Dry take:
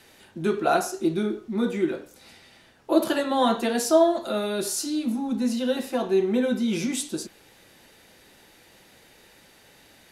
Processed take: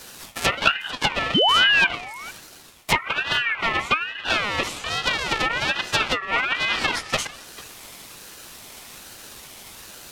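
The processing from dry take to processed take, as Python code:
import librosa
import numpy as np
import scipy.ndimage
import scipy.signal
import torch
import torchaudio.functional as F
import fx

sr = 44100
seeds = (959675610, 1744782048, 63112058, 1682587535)

p1 = fx.halfwave_hold(x, sr)
p2 = scipy.signal.sosfilt(scipy.signal.butter(6, 190.0, 'highpass', fs=sr, output='sos'), p1)
p3 = fx.peak_eq(p2, sr, hz=13000.0, db=9.0, octaves=1.7)
p4 = fx.env_lowpass_down(p3, sr, base_hz=330.0, full_db=-12.0)
p5 = fx.hpss(p4, sr, part='harmonic', gain_db=-7)
p6 = fx.peak_eq(p5, sr, hz=340.0, db=-14.5, octaves=1.0)
p7 = fx.spec_paint(p6, sr, seeds[0], shape='fall', start_s=1.34, length_s=0.53, low_hz=400.0, high_hz=1500.0, level_db=-23.0)
p8 = fx.rider(p7, sr, range_db=4, speed_s=0.5)
p9 = p7 + (p8 * librosa.db_to_amplitude(0.5))
p10 = p9 + 10.0 ** (-20.0 / 20.0) * np.pad(p9, (int(445 * sr / 1000.0), 0))[:len(p9)]
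p11 = fx.ring_lfo(p10, sr, carrier_hz=1900.0, swing_pct=20, hz=1.2)
y = p11 * librosa.db_to_amplitude(4.5)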